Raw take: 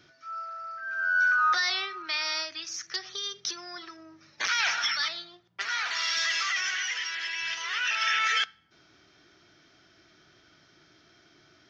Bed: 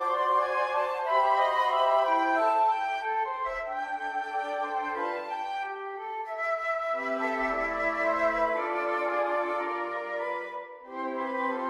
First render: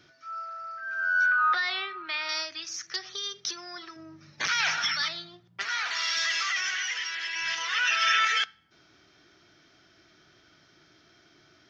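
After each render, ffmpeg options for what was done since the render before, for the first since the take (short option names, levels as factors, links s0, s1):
-filter_complex "[0:a]asettb=1/sr,asplit=3[s0][s1][s2];[s0]atrim=end=1.264[s3];[s1]atrim=start=1.26:end=2.29,asetpts=PTS-STARTPTS,afade=t=in:d=0.004:c=qsin,afade=t=out:st=1.026:d=0.004:c=qsin,lowpass=f=3800:w=0.5412,lowpass=f=3800:w=1.3066[s4];[s2]atrim=start=2.286[s5];[s3][s4]acrossfade=d=0.004:c1=hsin:c2=qsin[s6];[s6][s5]acrossfade=d=0.004:c1=qsin:c2=hsin,asettb=1/sr,asplit=3[s7][s8][s9];[s7]atrim=end=3.964[s10];[s8]atrim=start=3.96:end=5.64,asetpts=PTS-STARTPTS,afade=t=in:d=0.004:c=qsin,afade=t=out:st=1.676:d=0.004:c=qsin,equalizer=f=140:t=o:w=1.5:g=13[s11];[s9]atrim=start=5.636[s12];[s10][s11]acrossfade=d=0.004:c1=hsin:c2=qsin[s13];[s13][s12]acrossfade=d=0.004:c1=qsin:c2=hsin,asettb=1/sr,asplit=3[s14][s15][s16];[s14]atrim=end=7.354[s17];[s15]atrim=start=7.35:end=8.25,asetpts=PTS-STARTPTS,afade=t=in:d=0.004:c=qsin,afade=t=out:st=0.896:d=0.004:c=qsin,aecho=1:1:6.2:0.99,atrim=end_sample=39690[s18];[s16]atrim=start=8.246[s19];[s17][s18]acrossfade=d=0.004:c1=hsin:c2=qsin[s20];[s20][s19]acrossfade=d=0.004:c1=qsin:c2=hsin"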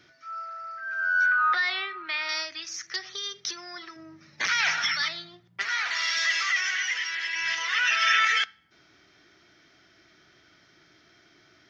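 -af "equalizer=f=2000:w=3.7:g=5.5,bandreject=f=50:t=h:w=6,bandreject=f=100:t=h:w=6,bandreject=f=150:t=h:w=6"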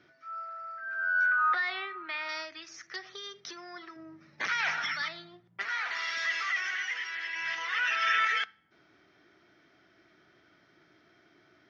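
-af "lowpass=f=1300:p=1,lowshelf=f=100:g=-11.5"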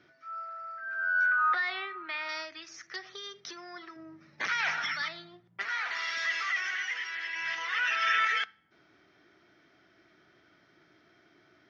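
-af anull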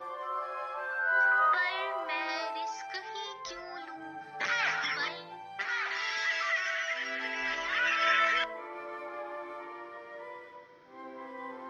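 -filter_complex "[1:a]volume=0.237[s0];[0:a][s0]amix=inputs=2:normalize=0"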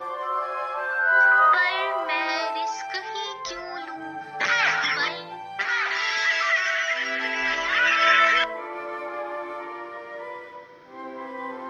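-af "volume=2.66"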